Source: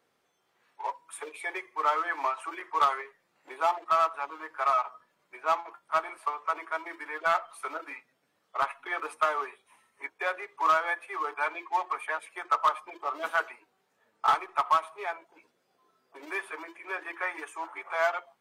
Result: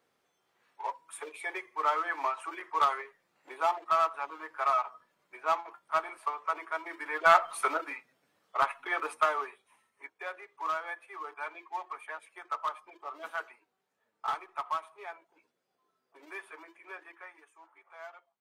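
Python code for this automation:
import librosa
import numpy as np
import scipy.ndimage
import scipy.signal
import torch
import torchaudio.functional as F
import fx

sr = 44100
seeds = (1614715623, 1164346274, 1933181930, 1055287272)

y = fx.gain(x, sr, db=fx.line((6.83, -2.0), (7.58, 9.0), (7.95, 1.0), (9.1, 1.0), (10.13, -9.0), (16.89, -9.0), (17.43, -20.0)))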